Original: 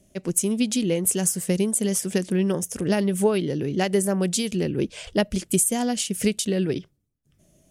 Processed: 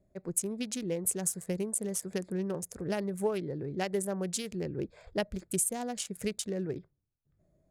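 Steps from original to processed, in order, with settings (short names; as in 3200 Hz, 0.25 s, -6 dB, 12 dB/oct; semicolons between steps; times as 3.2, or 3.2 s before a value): Wiener smoothing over 15 samples; bell 240 Hz -6.5 dB 0.98 oct; gain -7.5 dB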